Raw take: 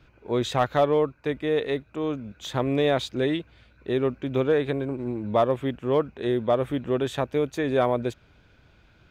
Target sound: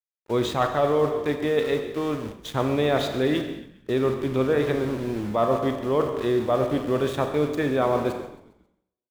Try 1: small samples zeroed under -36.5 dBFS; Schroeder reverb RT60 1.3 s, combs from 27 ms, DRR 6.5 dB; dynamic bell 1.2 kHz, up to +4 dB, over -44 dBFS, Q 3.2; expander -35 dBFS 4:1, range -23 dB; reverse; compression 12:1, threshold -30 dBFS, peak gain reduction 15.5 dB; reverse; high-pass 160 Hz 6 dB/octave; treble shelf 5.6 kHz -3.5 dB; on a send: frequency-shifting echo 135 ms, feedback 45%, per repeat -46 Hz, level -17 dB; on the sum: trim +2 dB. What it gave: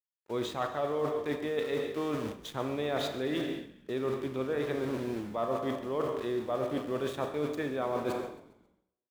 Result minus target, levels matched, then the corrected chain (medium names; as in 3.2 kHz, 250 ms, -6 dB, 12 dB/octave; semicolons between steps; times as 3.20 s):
compression: peak gain reduction +10 dB; 125 Hz band -2.5 dB
small samples zeroed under -36.5 dBFS; Schroeder reverb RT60 1.3 s, combs from 27 ms, DRR 6.5 dB; dynamic bell 1.2 kHz, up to +4 dB, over -44 dBFS, Q 3.2; expander -35 dBFS 4:1, range -23 dB; reverse; compression 12:1, threshold -19 dBFS, peak gain reduction 5.5 dB; reverse; treble shelf 5.6 kHz -3.5 dB; on a send: frequency-shifting echo 135 ms, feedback 45%, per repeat -46 Hz, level -17 dB; on the sum: trim +2 dB